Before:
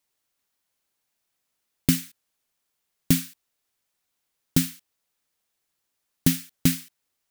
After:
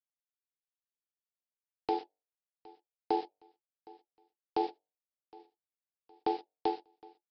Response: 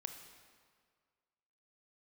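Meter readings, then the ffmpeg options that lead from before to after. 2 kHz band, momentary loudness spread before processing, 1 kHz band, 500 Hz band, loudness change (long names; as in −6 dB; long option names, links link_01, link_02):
−17.0 dB, 9 LU, +17.0 dB, +7.5 dB, −11.0 dB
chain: -filter_complex "[0:a]highpass=frequency=170:poles=1,bandreject=frequency=50:width_type=h:width=6,bandreject=frequency=100:width_type=h:width=6,bandreject=frequency=150:width_type=h:width=6,bandreject=frequency=200:width_type=h:width=6,bandreject=frequency=250:width_type=h:width=6,bandreject=frequency=300:width_type=h:width=6,bandreject=frequency=350:width_type=h:width=6,bandreject=frequency=400:width_type=h:width=6,bandreject=frequency=450:width_type=h:width=6,anlmdn=1,adynamicequalizer=threshold=0.00708:dfrequency=2600:dqfactor=0.96:tfrequency=2600:tqfactor=0.96:attack=5:release=100:ratio=0.375:range=2:mode=cutabove:tftype=bell,dynaudnorm=framelen=200:gausssize=13:maxgain=14.5dB,alimiter=limit=-11dB:level=0:latency=1:release=92,acrossover=split=300[link_01][link_02];[link_02]acompressor=threshold=-37dB:ratio=10[link_03];[link_01][link_03]amix=inputs=2:normalize=0,aeval=exprs='val(0)*sin(2*PI*600*n/s)':channel_layout=same,asplit=2[link_04][link_05];[link_05]aecho=0:1:764|1528|2292:0.0708|0.0297|0.0125[link_06];[link_04][link_06]amix=inputs=2:normalize=0,aresample=11025,aresample=44100"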